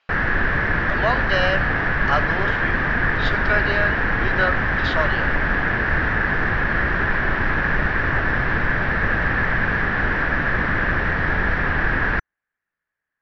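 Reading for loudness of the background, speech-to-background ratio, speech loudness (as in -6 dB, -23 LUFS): -20.5 LUFS, -5.0 dB, -25.5 LUFS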